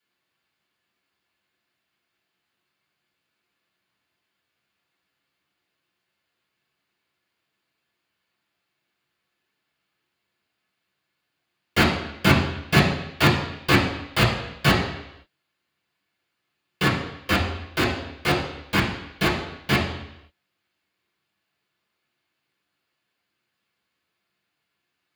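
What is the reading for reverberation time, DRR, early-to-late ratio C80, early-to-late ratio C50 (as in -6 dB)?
0.85 s, -6.5 dB, 8.5 dB, 5.5 dB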